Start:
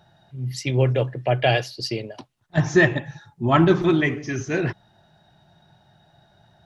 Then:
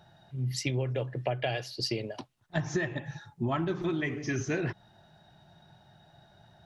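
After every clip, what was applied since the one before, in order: compressor 16:1, threshold -25 dBFS, peak gain reduction 15 dB; gain -1.5 dB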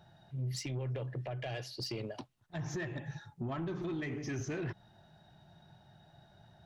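low shelf 360 Hz +3.5 dB; limiter -23.5 dBFS, peak gain reduction 9 dB; soft clip -27 dBFS, distortion -17 dB; gain -4 dB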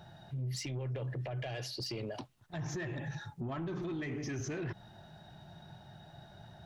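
limiter -40 dBFS, peak gain reduction 8 dB; gain +7 dB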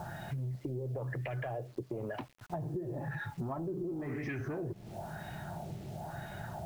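LFO low-pass sine 0.99 Hz 390–2300 Hz; bit-crush 11-bit; compressor 6:1, threshold -46 dBFS, peak gain reduction 15.5 dB; gain +10 dB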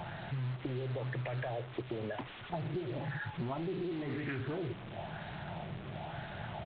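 delta modulation 32 kbps, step -40.5 dBFS; downsampling 8000 Hz; Doppler distortion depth 0.26 ms

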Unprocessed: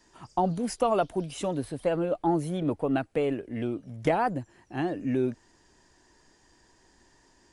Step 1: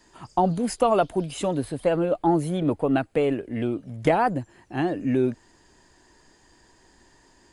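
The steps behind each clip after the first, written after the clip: notch 5700 Hz, Q 9.1; gain +4.5 dB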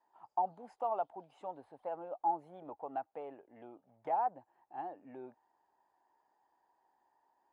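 band-pass 830 Hz, Q 5.4; gain -6 dB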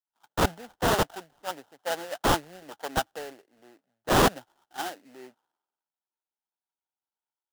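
sample-rate reducer 2300 Hz, jitter 20%; wrapped overs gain 29.5 dB; three-band expander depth 100%; gain +8.5 dB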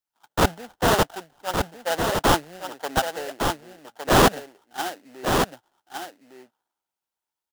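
echo 1.16 s -5.5 dB; gain +4.5 dB

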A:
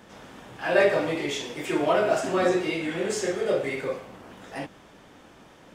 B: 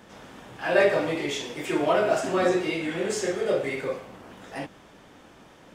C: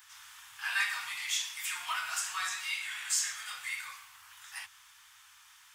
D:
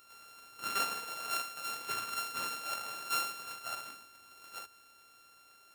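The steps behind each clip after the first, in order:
nothing audible
inverse Chebyshev band-stop 160–620 Hz, stop band 40 dB; RIAA curve recording; gain -5.5 dB
sample sorter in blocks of 32 samples; gain -2.5 dB

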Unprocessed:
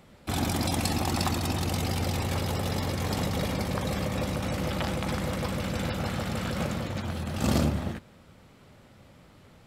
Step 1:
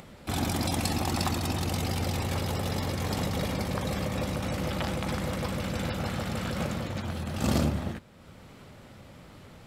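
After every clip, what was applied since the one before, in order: upward compressor, threshold -40 dBFS; gain -1 dB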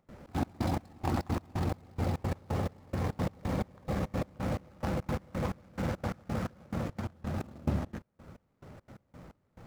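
median filter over 15 samples; step gate ".xx.x..xx.." 174 bpm -24 dB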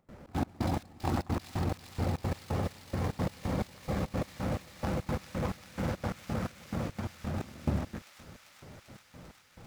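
thin delay 0.394 s, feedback 82%, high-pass 2600 Hz, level -5 dB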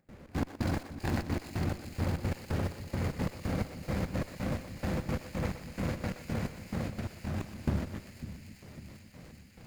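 minimum comb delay 0.43 ms; split-band echo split 300 Hz, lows 0.55 s, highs 0.122 s, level -11.5 dB

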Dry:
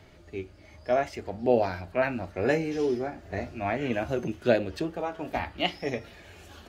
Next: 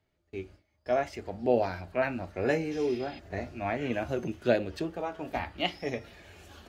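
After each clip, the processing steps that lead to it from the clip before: spectral repair 2.79–3.16, 1900–5100 Hz before; gate with hold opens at -39 dBFS; gain -2.5 dB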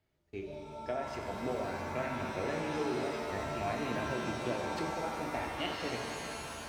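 compressor, threshold -31 dBFS, peak gain reduction 12 dB; shimmer reverb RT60 2.9 s, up +7 st, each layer -2 dB, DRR 2 dB; gain -3 dB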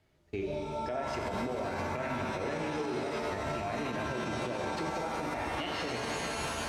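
Bessel low-pass 11000 Hz, order 2; compressor, threshold -37 dBFS, peak gain reduction 8 dB; limiter -34.5 dBFS, peak gain reduction 8 dB; gain +9 dB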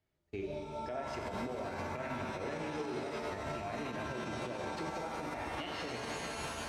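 upward expander 1.5:1, over -51 dBFS; gain -3.5 dB

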